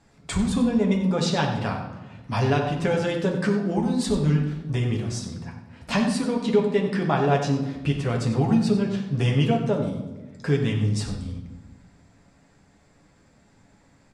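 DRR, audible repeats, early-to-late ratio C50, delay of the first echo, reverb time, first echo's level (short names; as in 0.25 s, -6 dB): -0.5 dB, 1, 5.5 dB, 93 ms, 1.2 s, -11.5 dB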